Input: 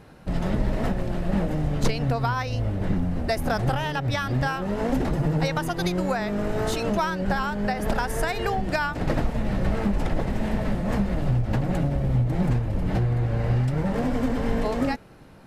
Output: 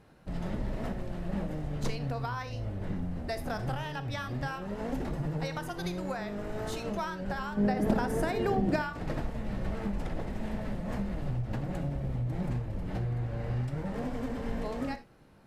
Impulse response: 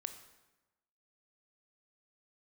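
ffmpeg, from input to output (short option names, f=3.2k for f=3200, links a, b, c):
-filter_complex "[0:a]asettb=1/sr,asplit=3[a][b][c];[a]atrim=end=7.574[d];[b]atrim=start=7.57:end=8.82,asetpts=PTS-STARTPTS,afade=t=in:d=0.004:c=qsin,afade=t=out:st=1.246:d=0.004:c=qsin,equalizer=f=260:t=o:w=2.3:g=13.5[e];[c]atrim=start=8.816[f];[d][e]acrossfade=d=0.004:c1=hsin:c2=qsin[g];[g][f]acrossfade=d=0.004:c1=qsin:c2=hsin[h];[1:a]atrim=start_sample=2205,atrim=end_sample=4410[i];[h][i]afir=irnorm=-1:irlink=0,volume=-7dB"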